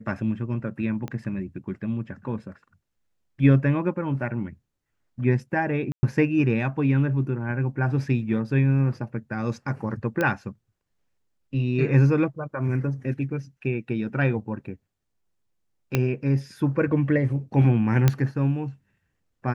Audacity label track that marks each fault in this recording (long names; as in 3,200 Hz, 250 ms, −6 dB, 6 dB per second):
1.080000	1.080000	click −20 dBFS
5.920000	6.030000	drop-out 110 ms
10.210000	10.210000	click −12 dBFS
15.950000	15.950000	click −8 dBFS
18.080000	18.080000	click −6 dBFS